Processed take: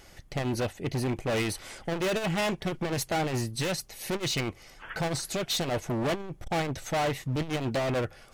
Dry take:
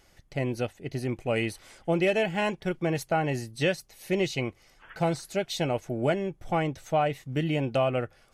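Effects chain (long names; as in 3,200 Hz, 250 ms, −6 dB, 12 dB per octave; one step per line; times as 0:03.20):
gain into a clipping stage and back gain 33 dB
saturating transformer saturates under 63 Hz
level +8 dB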